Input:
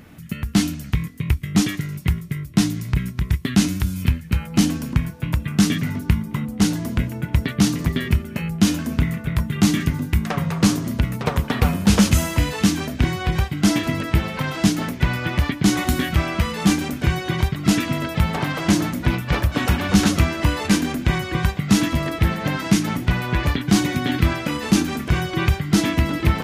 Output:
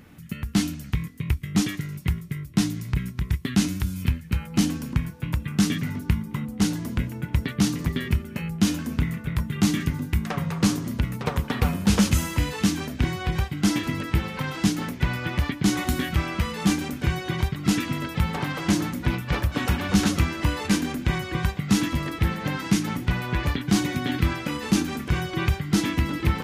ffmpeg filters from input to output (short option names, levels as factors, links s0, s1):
-af "bandreject=f=650:w=12,volume=0.596"